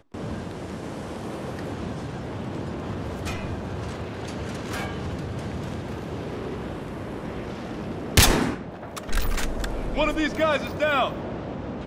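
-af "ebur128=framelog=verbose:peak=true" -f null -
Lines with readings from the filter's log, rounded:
Integrated loudness:
  I:         -28.2 LUFS
  Threshold: -38.2 LUFS
Loudness range:
  LRA:         8.6 LU
  Threshold: -48.2 LUFS
  LRA low:   -32.9 LUFS
  LRA high:  -24.3 LUFS
True peak:
  Peak:       -7.6 dBFS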